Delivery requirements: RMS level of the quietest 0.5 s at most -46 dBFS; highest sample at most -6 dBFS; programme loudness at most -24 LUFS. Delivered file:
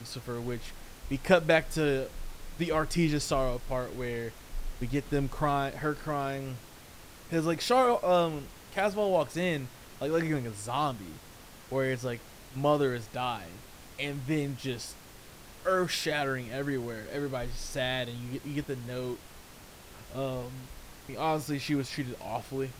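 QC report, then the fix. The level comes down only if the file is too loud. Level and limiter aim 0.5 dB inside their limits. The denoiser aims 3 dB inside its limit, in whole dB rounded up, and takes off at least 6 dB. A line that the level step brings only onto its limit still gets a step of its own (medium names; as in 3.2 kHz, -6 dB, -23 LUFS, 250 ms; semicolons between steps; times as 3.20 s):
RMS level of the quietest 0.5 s -51 dBFS: pass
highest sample -9.5 dBFS: pass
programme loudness -31.5 LUFS: pass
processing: none needed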